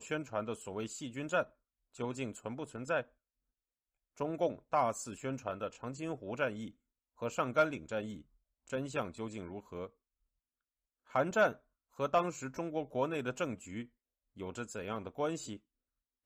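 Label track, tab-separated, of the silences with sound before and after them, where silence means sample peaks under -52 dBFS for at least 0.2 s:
1.470000	1.950000	silence
3.030000	4.170000	silence
6.700000	7.190000	silence
8.220000	8.670000	silence
9.880000	11.100000	silence
11.570000	11.980000	silence
13.860000	14.370000	silence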